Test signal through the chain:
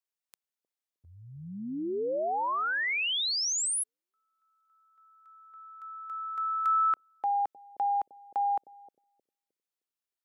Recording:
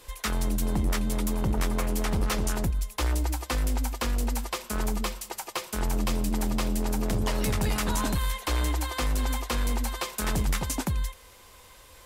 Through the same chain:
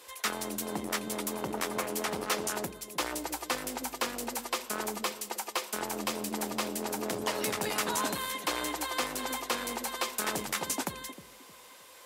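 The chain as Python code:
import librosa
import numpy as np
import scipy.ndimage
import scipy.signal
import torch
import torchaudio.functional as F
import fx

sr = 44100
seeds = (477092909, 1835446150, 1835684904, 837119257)

p1 = scipy.signal.sosfilt(scipy.signal.butter(2, 330.0, 'highpass', fs=sr, output='sos'), x)
y = p1 + fx.echo_bbd(p1, sr, ms=309, stages=1024, feedback_pct=32, wet_db=-11.0, dry=0)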